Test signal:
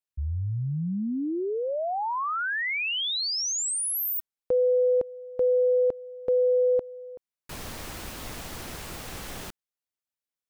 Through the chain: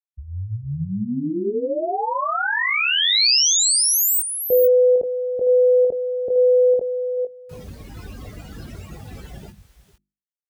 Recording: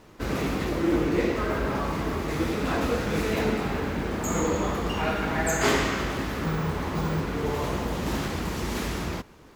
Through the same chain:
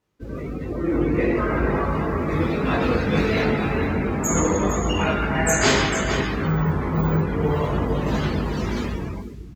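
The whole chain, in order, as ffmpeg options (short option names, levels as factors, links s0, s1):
-filter_complex "[0:a]asplit=2[s0][s1];[s1]adelay=20,volume=0.668[s2];[s0][s2]amix=inputs=2:normalize=0,dynaudnorm=f=170:g=11:m=2.51,highpass=40,equalizer=f=740:w=0.38:g=-5,bandreject=f=50:t=h:w=6,bandreject=f=100:t=h:w=6,bandreject=f=150:t=h:w=6,bandreject=f=200:t=h:w=6,bandreject=f=250:t=h:w=6,bandreject=f=300:t=h:w=6,bandreject=f=350:t=h:w=6,aecho=1:1:455:0.422,afftdn=nr=21:nf=-29,adynamicequalizer=threshold=0.01:dfrequency=4700:dqfactor=1.7:tfrequency=4700:tqfactor=1.7:attack=5:release=100:ratio=0.417:range=2:mode=boostabove:tftype=bell"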